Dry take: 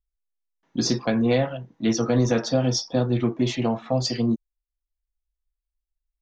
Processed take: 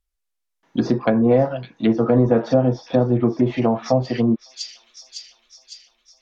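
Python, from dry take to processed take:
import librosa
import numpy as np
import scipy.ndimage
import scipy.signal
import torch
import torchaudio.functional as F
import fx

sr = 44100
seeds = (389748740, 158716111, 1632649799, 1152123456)

p1 = x + fx.echo_wet_highpass(x, sr, ms=556, feedback_pct=59, hz=3900.0, wet_db=-9.0, dry=0)
p2 = fx.env_lowpass_down(p1, sr, base_hz=910.0, full_db=-18.5)
p3 = fx.low_shelf(p2, sr, hz=270.0, db=-6.0)
y = F.gain(torch.from_numpy(p3), 8.0).numpy()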